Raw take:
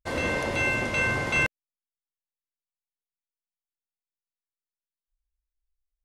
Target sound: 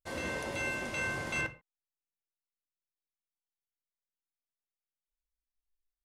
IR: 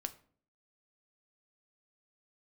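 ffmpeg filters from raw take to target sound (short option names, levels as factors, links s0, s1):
-filter_complex "[0:a]asetnsamples=n=441:p=0,asendcmd='1.41 highshelf g -5.5',highshelf=f=5500:g=8[s0];[1:a]atrim=start_sample=2205,atrim=end_sample=6615,asetrate=43659,aresample=44100[s1];[s0][s1]afir=irnorm=-1:irlink=0,volume=0.398"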